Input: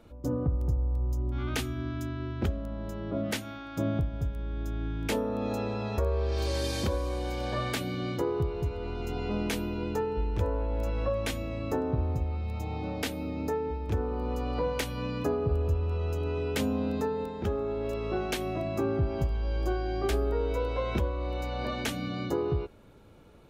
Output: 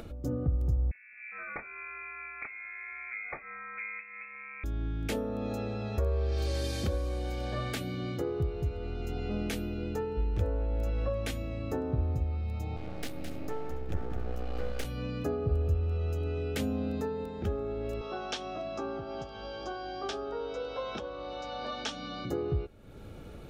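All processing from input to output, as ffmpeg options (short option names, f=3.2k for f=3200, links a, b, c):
-filter_complex "[0:a]asettb=1/sr,asplit=3[a][b][c];[a]atrim=end=0.914[d];[b]atrim=start=0.91:end=4.64,asetpts=PTS-STARTPTS,afade=t=in:d=0.004:c=qsin,afade=t=out:st=3.726:d=0.004:c=qsin,highpass=540,lowpass=f=2.3k:t=q:w=0.5098,lowpass=f=2.3k:t=q:w=0.6013,lowpass=f=2.3k:t=q:w=0.9,lowpass=f=2.3k:t=q:w=2.563,afreqshift=-2700[e];[c]atrim=start=4.636[f];[d][e]acrossfade=d=0.004:c1=hsin:c2=qsin[g];[g][f]acrossfade=d=0.004:c1=qsin:c2=hsin,asettb=1/sr,asplit=3[h][i][j];[h]atrim=end=12.764[k];[i]atrim=start=12.76:end=14.85,asetpts=PTS-STARTPTS,afade=t=in:d=0.004:c=qsin,afade=t=out:st=2.086:d=0.004:c=qsin,aeval=exprs='max(val(0),0)':c=same,aecho=1:1:213|283:0.447|0.112,atrim=end_sample=92169[l];[j]atrim=start=14.846[m];[k][l]acrossfade=d=0.004:c1=hsin:c2=qsin[n];[n][m]acrossfade=d=0.004:c1=qsin:c2=hsin,asettb=1/sr,asplit=3[o][p][q];[o]atrim=end=18.014[r];[p]atrim=start=18.01:end=22.25,asetpts=PTS-STARTPTS,afade=t=in:d=0.004:c=qsin,afade=t=out:st=4.236:d=0.004:c=qsin,highpass=310,equalizer=f=350:t=q:w=4:g=-7,equalizer=f=930:t=q:w=4:g=8,equalizer=f=1.3k:t=q:w=4:g=4,equalizer=f=2.1k:t=q:w=4:g=-7,equalizer=f=3.4k:t=q:w=4:g=6,equalizer=f=5.5k:t=q:w=4:g=7,lowpass=f=6.8k:w=0.5412,lowpass=f=6.8k:w=1.3066,aeval=exprs='val(0)+0.00178*(sin(2*PI*50*n/s)+sin(2*PI*2*50*n/s)/2+sin(2*PI*3*50*n/s)/3+sin(2*PI*4*50*n/s)/4+sin(2*PI*5*50*n/s)/5)':c=same[s];[q]atrim=start=22.246[t];[r][s]acrossfade=d=0.004:c1=hsin:c2=qsin[u];[u][t]acrossfade=d=0.004:c1=qsin:c2=hsin,lowshelf=f=130:g=5,bandreject=f=980:w=5.3,acompressor=mode=upward:threshold=-30dB:ratio=2.5,volume=-4dB"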